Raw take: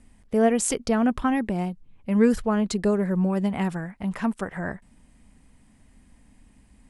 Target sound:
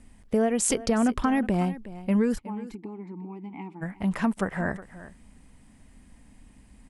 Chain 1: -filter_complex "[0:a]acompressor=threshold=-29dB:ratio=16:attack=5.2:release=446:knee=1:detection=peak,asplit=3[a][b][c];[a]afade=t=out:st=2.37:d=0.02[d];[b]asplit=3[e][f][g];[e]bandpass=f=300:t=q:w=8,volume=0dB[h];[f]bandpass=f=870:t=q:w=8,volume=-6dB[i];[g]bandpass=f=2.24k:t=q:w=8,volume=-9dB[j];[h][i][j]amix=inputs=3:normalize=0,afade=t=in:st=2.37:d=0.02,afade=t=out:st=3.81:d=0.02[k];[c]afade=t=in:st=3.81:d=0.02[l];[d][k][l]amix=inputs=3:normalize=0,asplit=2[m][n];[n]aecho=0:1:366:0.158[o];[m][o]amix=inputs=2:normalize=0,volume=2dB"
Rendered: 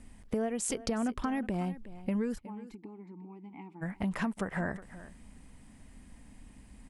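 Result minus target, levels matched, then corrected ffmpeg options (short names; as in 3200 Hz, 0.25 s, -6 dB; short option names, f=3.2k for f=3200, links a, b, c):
compressor: peak gain reduction +9 dB
-filter_complex "[0:a]acompressor=threshold=-19.5dB:ratio=16:attack=5.2:release=446:knee=1:detection=peak,asplit=3[a][b][c];[a]afade=t=out:st=2.37:d=0.02[d];[b]asplit=3[e][f][g];[e]bandpass=f=300:t=q:w=8,volume=0dB[h];[f]bandpass=f=870:t=q:w=8,volume=-6dB[i];[g]bandpass=f=2.24k:t=q:w=8,volume=-9dB[j];[h][i][j]amix=inputs=3:normalize=0,afade=t=in:st=2.37:d=0.02,afade=t=out:st=3.81:d=0.02[k];[c]afade=t=in:st=3.81:d=0.02[l];[d][k][l]amix=inputs=3:normalize=0,asplit=2[m][n];[n]aecho=0:1:366:0.158[o];[m][o]amix=inputs=2:normalize=0,volume=2dB"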